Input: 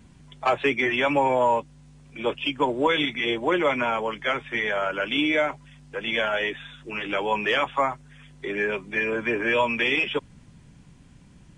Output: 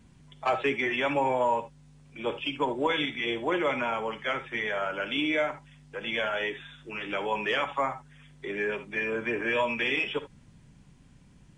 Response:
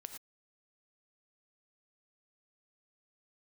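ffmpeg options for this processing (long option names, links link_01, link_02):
-filter_complex "[1:a]atrim=start_sample=2205,atrim=end_sample=3528,asetrate=41013,aresample=44100[link_01];[0:a][link_01]afir=irnorm=-1:irlink=0"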